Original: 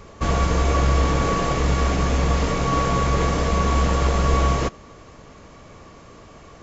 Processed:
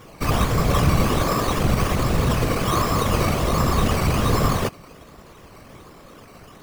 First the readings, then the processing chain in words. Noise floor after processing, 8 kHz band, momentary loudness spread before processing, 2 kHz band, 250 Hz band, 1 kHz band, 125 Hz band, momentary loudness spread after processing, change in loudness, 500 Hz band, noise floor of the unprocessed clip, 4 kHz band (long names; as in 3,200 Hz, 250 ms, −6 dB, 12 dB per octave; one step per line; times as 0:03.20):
−46 dBFS, can't be measured, 2 LU, +0.5 dB, +2.0 dB, −0.5 dB, 0.0 dB, 3 LU, 0.0 dB, 0.0 dB, −45 dBFS, +2.5 dB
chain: sample-and-hold swept by an LFO 10×, swing 60% 1.3 Hz
random phases in short frames